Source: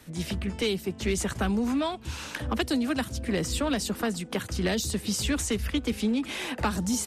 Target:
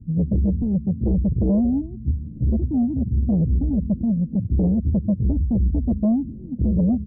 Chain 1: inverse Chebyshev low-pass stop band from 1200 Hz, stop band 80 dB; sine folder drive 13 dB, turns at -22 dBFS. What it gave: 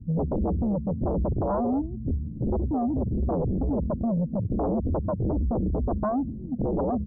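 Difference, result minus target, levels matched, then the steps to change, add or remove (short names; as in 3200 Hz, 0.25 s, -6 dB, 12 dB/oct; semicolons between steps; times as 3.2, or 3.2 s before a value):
sine folder: distortion +17 dB
change: sine folder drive 13 dB, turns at -15 dBFS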